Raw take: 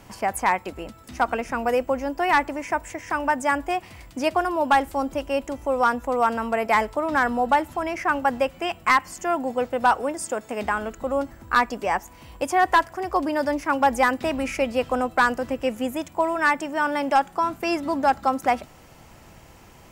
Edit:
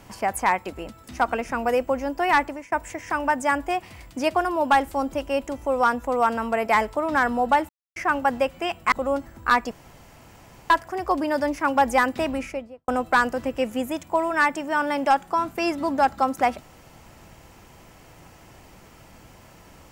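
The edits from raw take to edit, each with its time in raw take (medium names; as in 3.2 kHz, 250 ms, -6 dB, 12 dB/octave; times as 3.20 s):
2.43–2.72 s: fade out, to -19.5 dB
7.69–7.96 s: mute
8.92–10.97 s: delete
11.76–12.75 s: room tone
14.26–14.93 s: studio fade out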